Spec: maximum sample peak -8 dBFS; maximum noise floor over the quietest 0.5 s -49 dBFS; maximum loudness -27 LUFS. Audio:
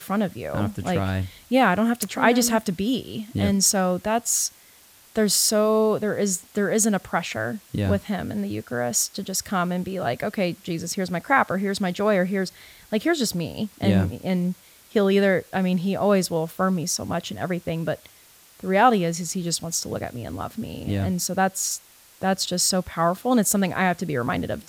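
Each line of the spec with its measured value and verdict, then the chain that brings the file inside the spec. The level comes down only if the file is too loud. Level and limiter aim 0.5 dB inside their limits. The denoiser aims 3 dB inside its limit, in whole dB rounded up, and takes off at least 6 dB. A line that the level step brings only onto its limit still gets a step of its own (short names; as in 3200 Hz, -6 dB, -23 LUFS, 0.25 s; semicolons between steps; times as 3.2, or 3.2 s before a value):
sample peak -4.5 dBFS: fail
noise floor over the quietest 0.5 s -52 dBFS: OK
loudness -23.5 LUFS: fail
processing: gain -4 dB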